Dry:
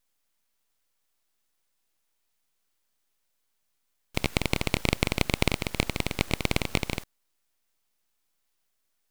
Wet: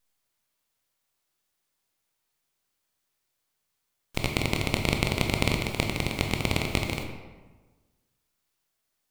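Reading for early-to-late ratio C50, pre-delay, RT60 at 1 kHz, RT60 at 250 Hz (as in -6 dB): 5.5 dB, 15 ms, 1.3 s, 1.4 s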